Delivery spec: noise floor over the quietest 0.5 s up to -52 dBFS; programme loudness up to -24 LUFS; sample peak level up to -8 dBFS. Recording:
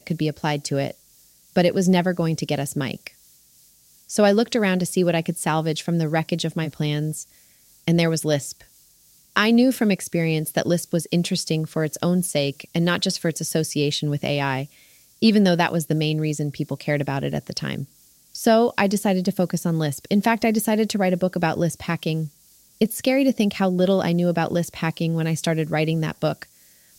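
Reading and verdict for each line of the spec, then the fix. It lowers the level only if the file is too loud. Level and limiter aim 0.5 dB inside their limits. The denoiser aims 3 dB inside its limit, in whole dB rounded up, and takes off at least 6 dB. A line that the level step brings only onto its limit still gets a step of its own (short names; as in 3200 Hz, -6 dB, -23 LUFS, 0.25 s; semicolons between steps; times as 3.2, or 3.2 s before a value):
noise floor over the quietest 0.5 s -56 dBFS: OK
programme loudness -22.0 LUFS: fail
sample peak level -4.5 dBFS: fail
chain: gain -2.5 dB; limiter -8.5 dBFS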